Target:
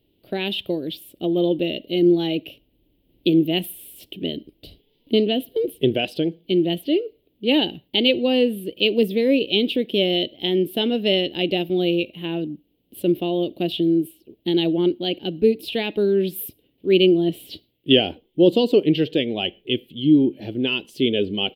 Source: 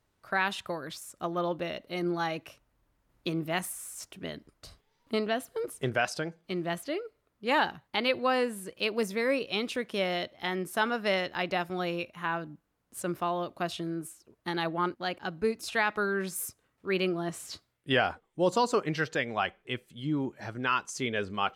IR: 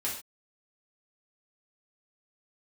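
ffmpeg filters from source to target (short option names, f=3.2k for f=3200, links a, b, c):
-filter_complex "[0:a]firequalizer=gain_entry='entry(110,0);entry(310,11);entry(1200,-27);entry(3000,10);entry(6400,-23);entry(14000,7)':delay=0.05:min_phase=1,asplit=2[a][b];[1:a]atrim=start_sample=2205,asetrate=48510,aresample=44100[c];[b][c]afir=irnorm=-1:irlink=0,volume=-26.5dB[d];[a][d]amix=inputs=2:normalize=0,volume=6dB"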